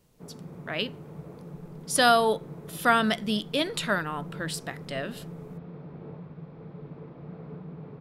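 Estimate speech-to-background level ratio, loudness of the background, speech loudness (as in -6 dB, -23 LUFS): 16.5 dB, -43.0 LUFS, -26.5 LUFS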